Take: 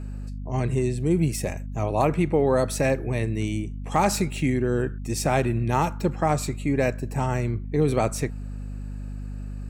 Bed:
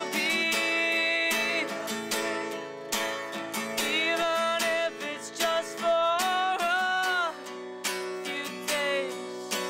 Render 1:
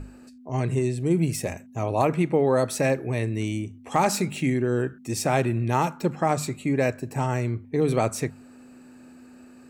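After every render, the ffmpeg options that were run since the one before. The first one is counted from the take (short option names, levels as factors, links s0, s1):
-af "bandreject=f=50:t=h:w=6,bandreject=f=100:t=h:w=6,bandreject=f=150:t=h:w=6,bandreject=f=200:t=h:w=6"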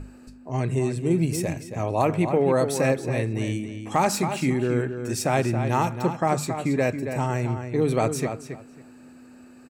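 -filter_complex "[0:a]asplit=2[s0][s1];[s1]adelay=275,lowpass=f=4500:p=1,volume=0.398,asplit=2[s2][s3];[s3]adelay=275,lowpass=f=4500:p=1,volume=0.19,asplit=2[s4][s5];[s5]adelay=275,lowpass=f=4500:p=1,volume=0.19[s6];[s0][s2][s4][s6]amix=inputs=4:normalize=0"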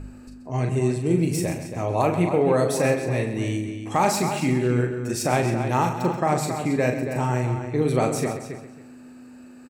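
-filter_complex "[0:a]asplit=2[s0][s1];[s1]adelay=40,volume=0.473[s2];[s0][s2]amix=inputs=2:normalize=0,aecho=1:1:131:0.282"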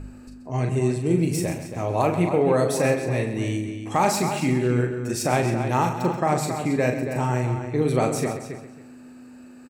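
-filter_complex "[0:a]asettb=1/sr,asplit=3[s0][s1][s2];[s0]atrim=end=1.394[s3];[s1]atrim=start=1.39:end=2.29,asetpts=PTS-STARTPTS,afade=t=in:d=0.004:c=qsin,afade=t=out:st=0.896:d=0.004:c=qsin,aeval=exprs='sgn(val(0))*max(abs(val(0))-0.00282,0)':c=same[s4];[s2]atrim=start=2.286[s5];[s3][s4]acrossfade=d=0.004:c1=hsin:c2=qsin[s6];[s6][s5]acrossfade=d=0.004:c1=qsin:c2=hsin"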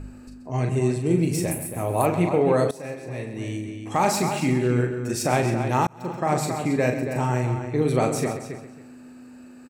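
-filter_complex "[0:a]asettb=1/sr,asplit=3[s0][s1][s2];[s0]atrim=end=1.514[s3];[s1]atrim=start=1.51:end=2.06,asetpts=PTS-STARTPTS,afade=t=in:d=0.004:c=qsin,afade=t=out:st=0.546:d=0.004:c=qsin,highshelf=f=8000:t=q:w=3:g=13.5[s4];[s2]atrim=start=2.056[s5];[s3][s4]acrossfade=d=0.004:c1=hsin:c2=qsin[s6];[s6][s5]acrossfade=d=0.004:c1=qsin:c2=hsin,asplit=3[s7][s8][s9];[s7]atrim=end=2.71,asetpts=PTS-STARTPTS,afade=t=out:st=2.706:d=0.004:c=hsin:silence=0.11885[s10];[s8]atrim=start=2.71:end=5.87,asetpts=PTS-STARTPTS,afade=t=in:d=1.45:silence=0.11885,afade=t=out:st=3.156:d=0.004:c=hsin[s11];[s9]atrim=start=5.87,asetpts=PTS-STARTPTS,afade=t=in:d=0.48[s12];[s10][s11][s12]concat=n=3:v=0:a=1"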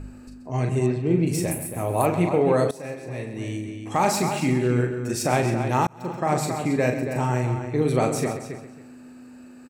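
-filter_complex "[0:a]asettb=1/sr,asplit=3[s0][s1][s2];[s0]atrim=end=0.864[s3];[s1]atrim=start=0.86:end=1.27,asetpts=PTS-STARTPTS,afade=t=in:d=0.004:c=qsin,afade=t=out:st=0.406:d=0.004:c=qsin,lowpass=3300[s4];[s2]atrim=start=1.266[s5];[s3][s4]acrossfade=d=0.004:c1=hsin:c2=qsin[s6];[s6][s5]acrossfade=d=0.004:c1=qsin:c2=hsin"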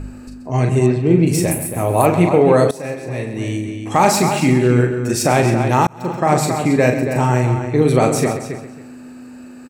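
-af "volume=2.51,alimiter=limit=0.891:level=0:latency=1"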